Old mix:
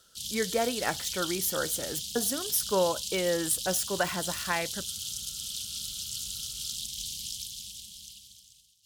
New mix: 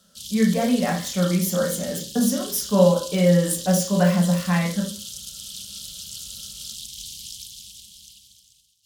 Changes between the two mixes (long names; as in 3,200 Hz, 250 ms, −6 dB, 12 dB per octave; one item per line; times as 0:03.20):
speech: add parametric band 1,400 Hz −6 dB 0.45 octaves
reverb: on, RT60 0.45 s